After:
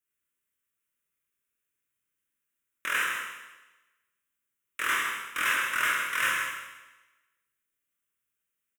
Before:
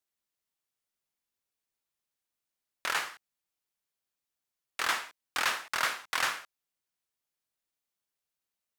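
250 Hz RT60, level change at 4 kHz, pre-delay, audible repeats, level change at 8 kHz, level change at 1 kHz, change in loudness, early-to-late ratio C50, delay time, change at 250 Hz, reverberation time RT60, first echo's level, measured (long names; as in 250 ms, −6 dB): 1.1 s, 0.0 dB, 19 ms, 1, +2.5 dB, +2.5 dB, +4.0 dB, 0.5 dB, 157 ms, +3.5 dB, 1.1 s, −7.5 dB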